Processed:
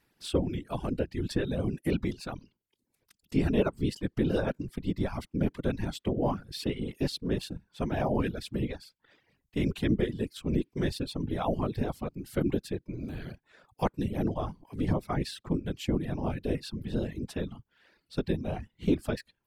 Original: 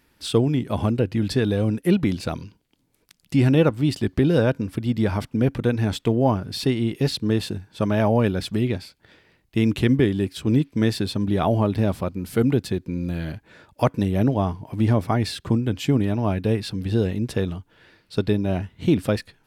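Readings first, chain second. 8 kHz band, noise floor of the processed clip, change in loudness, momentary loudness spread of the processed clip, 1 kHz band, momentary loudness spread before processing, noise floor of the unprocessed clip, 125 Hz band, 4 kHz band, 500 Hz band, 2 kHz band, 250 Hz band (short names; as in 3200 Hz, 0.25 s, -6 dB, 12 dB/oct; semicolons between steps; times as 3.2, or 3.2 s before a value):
-8.5 dB, -82 dBFS, -9.5 dB, 9 LU, -8.0 dB, 8 LU, -65 dBFS, -11.0 dB, -9.0 dB, -9.0 dB, -9.0 dB, -9.5 dB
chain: whisperiser; reverb removal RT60 0.57 s; gain -8.5 dB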